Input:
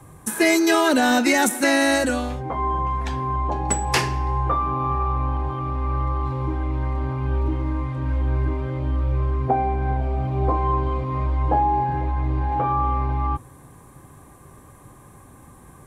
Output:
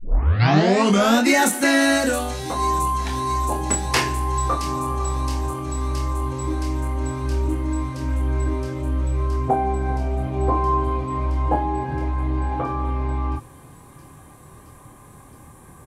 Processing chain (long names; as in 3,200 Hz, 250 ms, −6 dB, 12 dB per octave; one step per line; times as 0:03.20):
turntable start at the beginning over 1.20 s
double-tracking delay 26 ms −4.5 dB
delay with a high-pass on its return 670 ms, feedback 78%, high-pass 4,100 Hz, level −9.5 dB